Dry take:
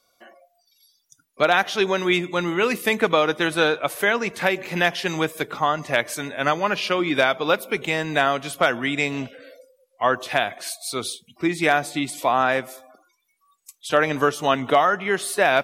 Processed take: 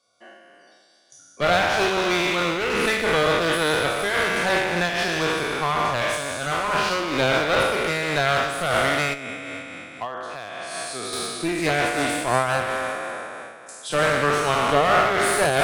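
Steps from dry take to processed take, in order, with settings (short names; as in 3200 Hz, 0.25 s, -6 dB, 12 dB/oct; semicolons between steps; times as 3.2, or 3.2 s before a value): spectral trails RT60 2.58 s; brick-wall FIR low-pass 11000 Hz; 9.13–11.13 compressor 16:1, threshold -25 dBFS, peak gain reduction 15 dB; HPF 70 Hz 24 dB/oct; one-sided clip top -22.5 dBFS; noise-modulated level, depth 60%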